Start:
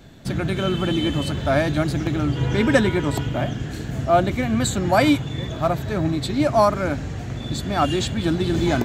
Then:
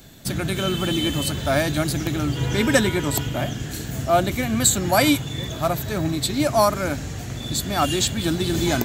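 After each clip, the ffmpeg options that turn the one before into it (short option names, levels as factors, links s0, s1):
-af "aemphasis=mode=production:type=75fm,volume=0.891"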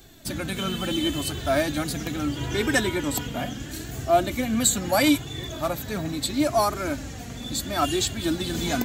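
-af "flanger=delay=2.5:depth=1.9:regen=24:speed=0.75:shape=triangular"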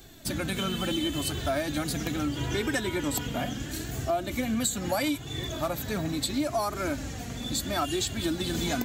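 -af "acompressor=threshold=0.0562:ratio=6"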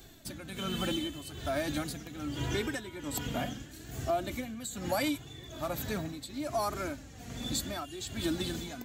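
-af "tremolo=f=1.2:d=0.74,volume=0.75"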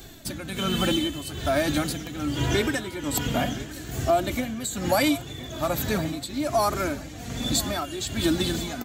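-af "aecho=1:1:1019|2038|3057:0.133|0.0547|0.0224,volume=2.82"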